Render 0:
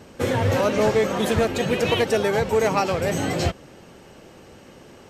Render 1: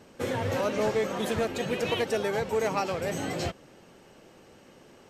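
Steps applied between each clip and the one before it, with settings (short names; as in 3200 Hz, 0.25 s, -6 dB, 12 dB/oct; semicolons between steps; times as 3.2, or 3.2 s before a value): bell 63 Hz -6 dB 1.9 oct; gain -7 dB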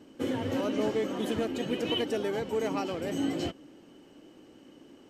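small resonant body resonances 290/3000 Hz, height 16 dB, ringing for 45 ms; gain -6.5 dB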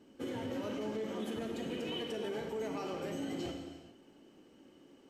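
non-linear reverb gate 0.48 s falling, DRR 2.5 dB; limiter -22 dBFS, peak gain reduction 6 dB; gain -8 dB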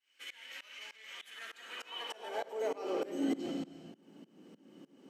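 tremolo saw up 3.3 Hz, depth 95%; high-pass sweep 2200 Hz -> 180 Hz, 1.2–3.75; gain +4 dB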